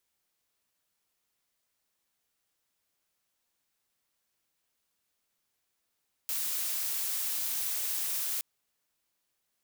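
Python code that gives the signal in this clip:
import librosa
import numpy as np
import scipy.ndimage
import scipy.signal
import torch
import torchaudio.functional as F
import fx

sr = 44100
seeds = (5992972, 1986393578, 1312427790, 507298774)

y = fx.noise_colour(sr, seeds[0], length_s=2.12, colour='blue', level_db=-32.5)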